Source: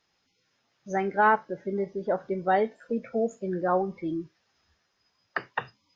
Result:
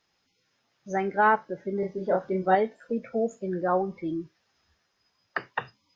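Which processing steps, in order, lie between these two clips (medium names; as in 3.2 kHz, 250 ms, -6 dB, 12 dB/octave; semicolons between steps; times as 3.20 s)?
1.80–2.55 s: doubling 27 ms -2 dB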